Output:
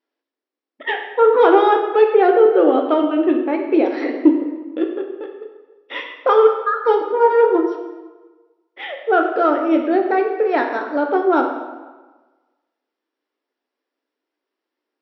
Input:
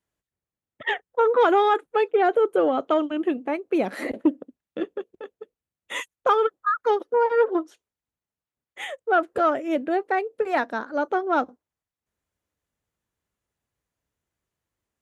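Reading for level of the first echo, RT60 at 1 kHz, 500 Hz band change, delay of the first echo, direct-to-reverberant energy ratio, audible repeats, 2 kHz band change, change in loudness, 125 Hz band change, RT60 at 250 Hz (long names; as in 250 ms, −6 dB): no echo audible, 1.3 s, +7.5 dB, no echo audible, 2.0 dB, no echo audible, +4.0 dB, +7.0 dB, can't be measured, 1.3 s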